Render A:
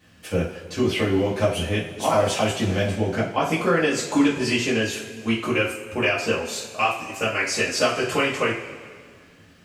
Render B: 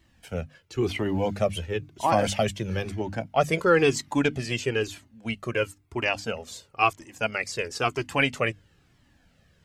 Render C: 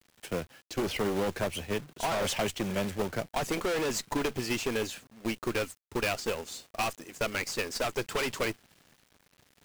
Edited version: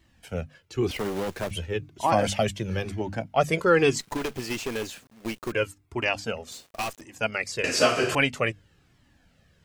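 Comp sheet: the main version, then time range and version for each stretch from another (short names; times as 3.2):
B
0.91–1.51 from C
4–5.52 from C
6.52–7.01 from C
7.64–8.15 from A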